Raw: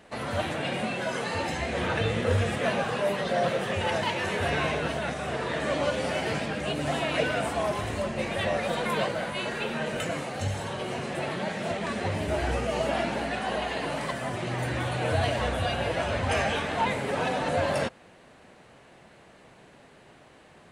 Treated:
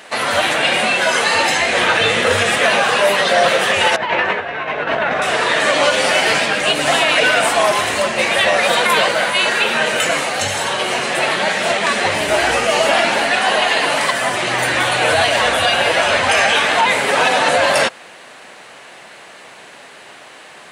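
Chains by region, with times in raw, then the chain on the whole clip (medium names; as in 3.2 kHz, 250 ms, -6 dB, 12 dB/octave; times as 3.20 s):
3.96–5.22 s: low-pass 1.9 kHz + compressor with a negative ratio -32 dBFS, ratio -0.5
whole clip: high-pass 1.3 kHz 6 dB/octave; loudness maximiser +23 dB; trim -3 dB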